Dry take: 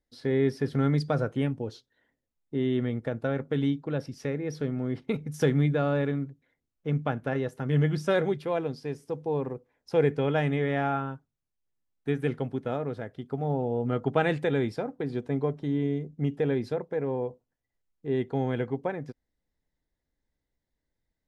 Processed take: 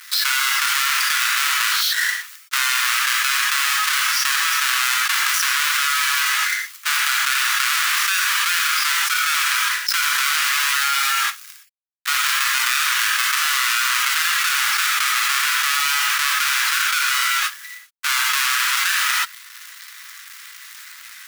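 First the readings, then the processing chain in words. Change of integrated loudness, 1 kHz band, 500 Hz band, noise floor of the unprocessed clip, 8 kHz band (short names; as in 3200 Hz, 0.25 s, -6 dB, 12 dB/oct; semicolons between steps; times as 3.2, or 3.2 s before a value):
+12.0 dB, +14.5 dB, under -30 dB, -84 dBFS, n/a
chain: half-waves squared off; steep high-pass 1200 Hz 48 dB/oct; limiter -19 dBFS, peak gain reduction 9 dB; non-linear reverb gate 0.14 s flat, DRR 1 dB; fast leveller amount 100%; gain +8 dB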